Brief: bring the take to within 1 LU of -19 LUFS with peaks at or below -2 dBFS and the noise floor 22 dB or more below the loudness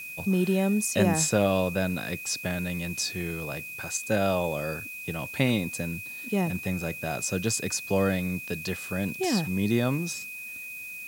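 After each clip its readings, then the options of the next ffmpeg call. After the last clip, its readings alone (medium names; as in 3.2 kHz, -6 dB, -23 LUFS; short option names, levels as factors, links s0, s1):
steady tone 2.5 kHz; tone level -37 dBFS; noise floor -39 dBFS; noise floor target -50 dBFS; loudness -28.0 LUFS; peak level -9.0 dBFS; loudness target -19.0 LUFS
-> -af "bandreject=f=2500:w=30"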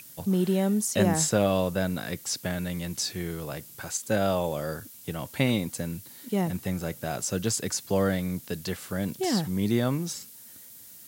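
steady tone not found; noise floor -48 dBFS; noise floor target -51 dBFS
-> -af "afftdn=nr=6:nf=-48"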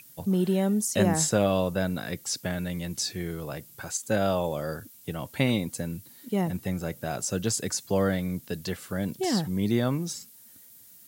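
noise floor -52 dBFS; loudness -28.5 LUFS; peak level -9.5 dBFS; loudness target -19.0 LUFS
-> -af "volume=2.99,alimiter=limit=0.794:level=0:latency=1"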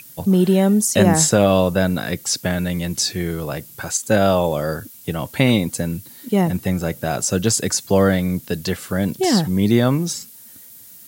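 loudness -19.0 LUFS; peak level -2.0 dBFS; noise floor -43 dBFS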